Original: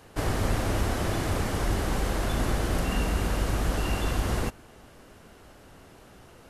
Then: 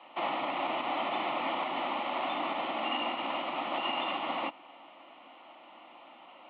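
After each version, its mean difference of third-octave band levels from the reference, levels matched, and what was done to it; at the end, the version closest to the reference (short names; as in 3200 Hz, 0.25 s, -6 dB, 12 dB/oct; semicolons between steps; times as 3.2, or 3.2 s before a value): 13.5 dB: limiter -19.5 dBFS, peak gain reduction 5.5 dB; mistuned SSB +51 Hz 250–3300 Hz; fixed phaser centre 1600 Hz, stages 6; gain +5.5 dB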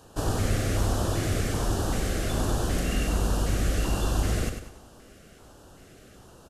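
2.0 dB: LFO notch square 1.3 Hz 940–2100 Hz; bell 7100 Hz +4 dB 0.72 oct; on a send: feedback echo 97 ms, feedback 40%, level -7.5 dB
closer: second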